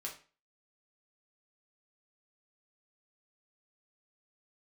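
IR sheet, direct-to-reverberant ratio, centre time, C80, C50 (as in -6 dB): -2.5 dB, 19 ms, 14.5 dB, 9.5 dB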